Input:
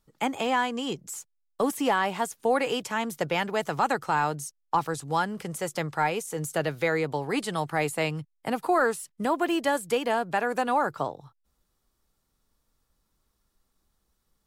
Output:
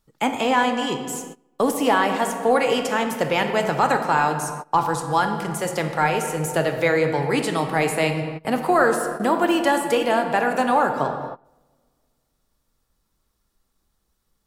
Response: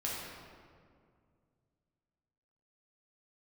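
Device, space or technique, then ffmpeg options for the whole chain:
keyed gated reverb: -filter_complex "[0:a]asplit=3[s0][s1][s2];[1:a]atrim=start_sample=2205[s3];[s1][s3]afir=irnorm=-1:irlink=0[s4];[s2]apad=whole_len=638076[s5];[s4][s5]sidechaingate=range=0.0794:threshold=0.002:ratio=16:detection=peak,volume=0.596[s6];[s0][s6]amix=inputs=2:normalize=0,volume=1.26"

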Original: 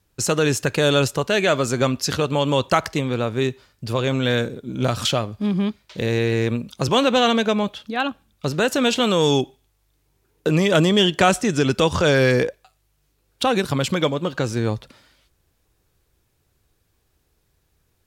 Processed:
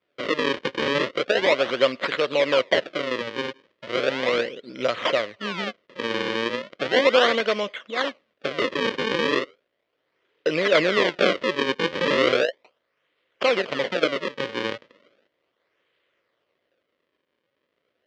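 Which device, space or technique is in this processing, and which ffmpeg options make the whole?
circuit-bent sampling toy: -af "acrusher=samples=37:mix=1:aa=0.000001:lfo=1:lforange=59.2:lforate=0.36,highpass=420,equalizer=f=540:t=q:w=4:g=7,equalizer=f=820:t=q:w=4:g=-9,equalizer=f=2000:t=q:w=4:g=6,equalizer=f=3100:t=q:w=4:g=6,lowpass=f=4700:w=0.5412,lowpass=f=4700:w=1.3066,volume=0.891"

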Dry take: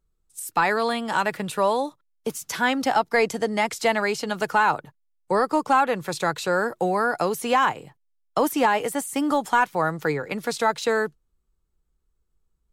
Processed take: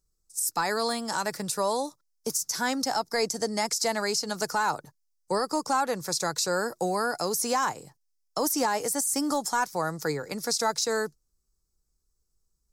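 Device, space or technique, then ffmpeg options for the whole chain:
over-bright horn tweeter: -af "highshelf=f=4000:t=q:w=3:g=10,alimiter=limit=0.266:level=0:latency=1:release=98,volume=0.596"

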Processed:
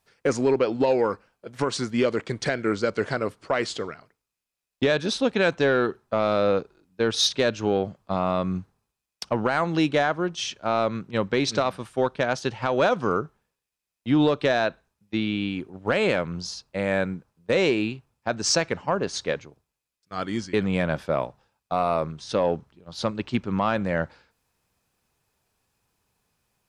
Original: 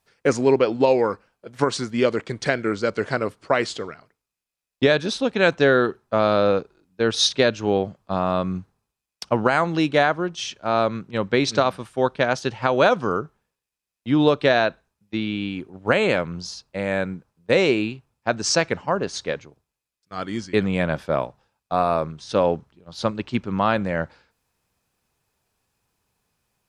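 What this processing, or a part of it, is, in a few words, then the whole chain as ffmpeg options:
soft clipper into limiter: -af "asoftclip=type=tanh:threshold=0.473,alimiter=limit=0.251:level=0:latency=1:release=211"

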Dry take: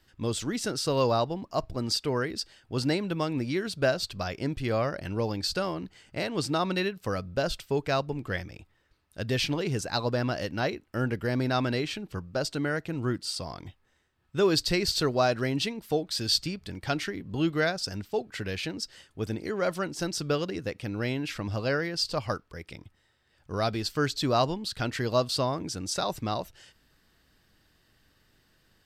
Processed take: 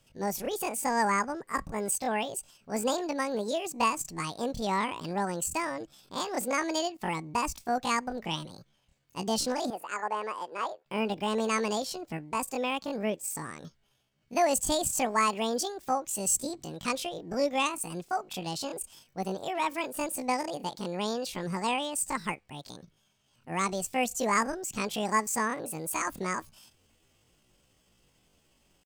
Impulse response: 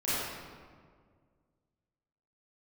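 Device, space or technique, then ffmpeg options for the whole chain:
chipmunk voice: -filter_complex "[0:a]asetrate=76340,aresample=44100,atempo=0.577676,asettb=1/sr,asplit=3[s0][s1][s2];[s0]atrim=end=9.704[s3];[s1]atrim=start=9.7:end=10.86,asetpts=PTS-STARTPTS,afade=t=in:d=0.004:c=qsin,afade=t=out:st=1.156:d=0.004:c=qsin,acrossover=split=410 2100:gain=0.0708 1 0.2[s4][s5][s6];[s4][s5][s6]amix=inputs=3:normalize=0[s7];[s2]atrim=start=10.856[s8];[s3][s7]acrossfade=d=0.004:c1=hsin:c2=qsin[s9];[s9][s8]acrossfade=d=0.004:c1=qsin:c2=hsin,volume=0.841"

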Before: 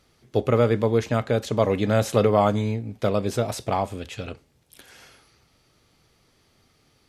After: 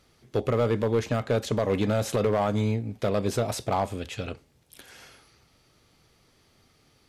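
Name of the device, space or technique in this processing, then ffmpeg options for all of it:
limiter into clipper: -af "alimiter=limit=0.251:level=0:latency=1:release=151,asoftclip=type=hard:threshold=0.141"

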